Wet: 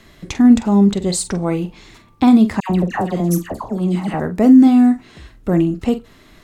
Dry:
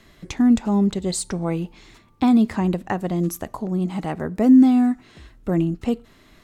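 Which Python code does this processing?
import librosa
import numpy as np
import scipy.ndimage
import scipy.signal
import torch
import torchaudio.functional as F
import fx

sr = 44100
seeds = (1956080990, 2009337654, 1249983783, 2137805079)

y = fx.doubler(x, sr, ms=45.0, db=-11.5)
y = fx.dispersion(y, sr, late='lows', ms=97.0, hz=1400.0, at=(2.6, 4.2))
y = y * 10.0 ** (5.0 / 20.0)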